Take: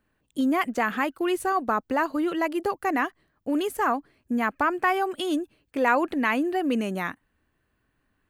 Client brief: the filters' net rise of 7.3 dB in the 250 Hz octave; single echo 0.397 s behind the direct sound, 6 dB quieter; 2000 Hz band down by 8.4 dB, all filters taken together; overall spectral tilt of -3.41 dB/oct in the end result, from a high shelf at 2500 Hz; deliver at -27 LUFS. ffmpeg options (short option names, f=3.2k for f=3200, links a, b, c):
-af "equalizer=f=250:t=o:g=9,equalizer=f=2k:t=o:g=-7.5,highshelf=f=2.5k:g=-8.5,aecho=1:1:397:0.501,volume=-5dB"